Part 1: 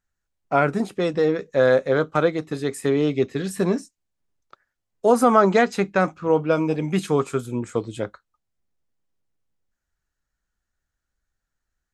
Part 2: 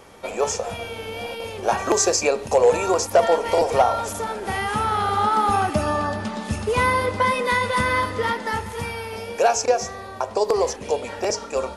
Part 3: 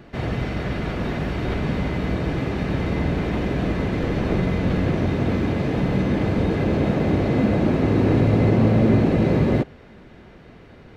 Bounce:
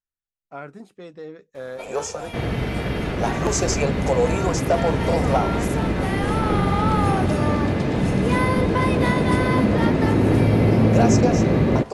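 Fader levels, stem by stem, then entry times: -17.0, -4.5, +0.5 dB; 0.00, 1.55, 2.20 s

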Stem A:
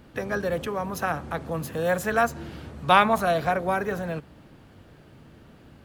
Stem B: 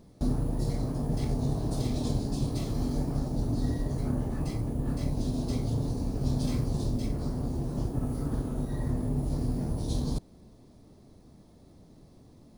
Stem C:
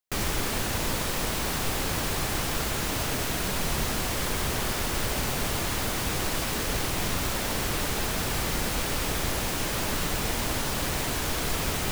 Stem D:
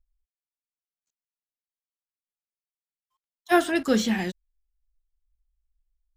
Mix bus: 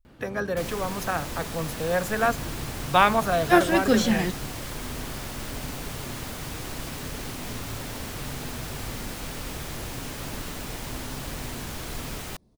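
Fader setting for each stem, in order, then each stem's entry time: -1.0, -10.0, -7.5, +1.5 dB; 0.05, 2.00, 0.45, 0.00 s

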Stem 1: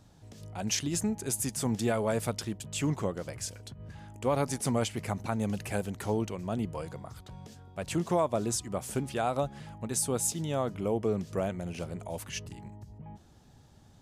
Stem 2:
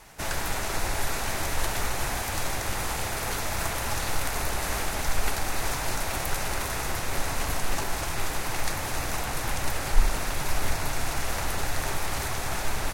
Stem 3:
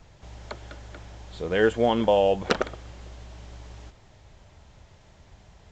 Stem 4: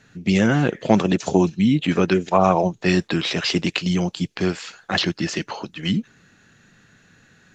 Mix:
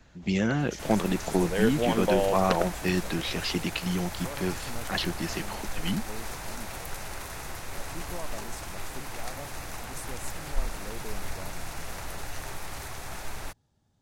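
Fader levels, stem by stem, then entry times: -13.5, -8.5, -5.5, -8.5 dB; 0.00, 0.60, 0.00, 0.00 s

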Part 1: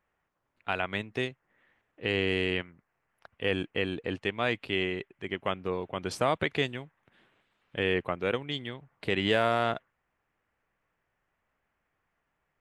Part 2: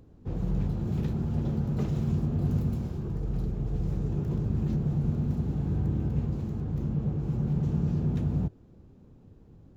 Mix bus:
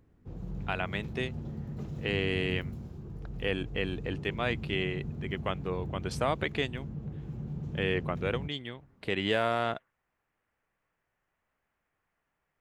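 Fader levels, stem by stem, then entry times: -2.5, -10.0 dB; 0.00, 0.00 s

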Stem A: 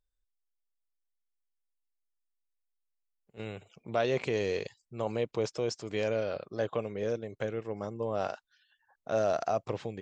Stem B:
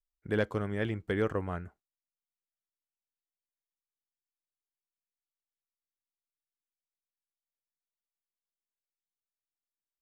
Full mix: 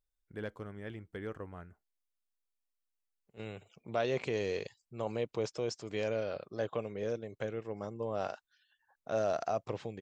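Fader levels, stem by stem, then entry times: -3.5, -11.5 dB; 0.00, 0.05 s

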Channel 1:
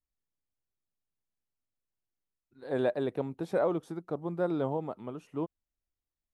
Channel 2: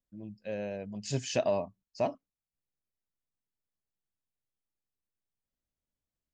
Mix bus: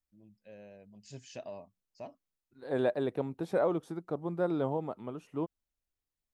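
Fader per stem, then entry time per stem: -0.5, -15.0 dB; 0.00, 0.00 s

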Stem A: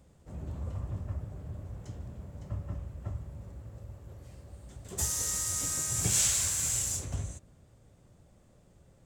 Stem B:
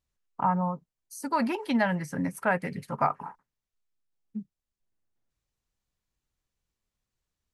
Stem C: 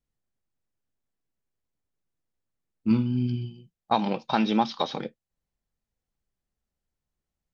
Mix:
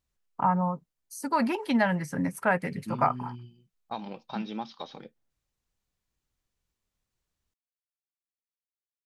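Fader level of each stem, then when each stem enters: off, +1.0 dB, -12.5 dB; off, 0.00 s, 0.00 s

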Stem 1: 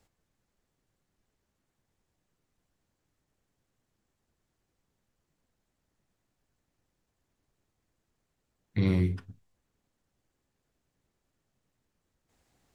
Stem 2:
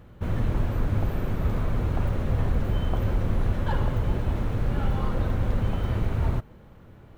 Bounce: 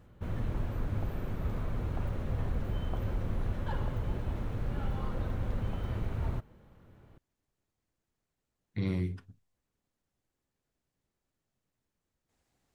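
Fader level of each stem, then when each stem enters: -6.0, -8.5 dB; 0.00, 0.00 s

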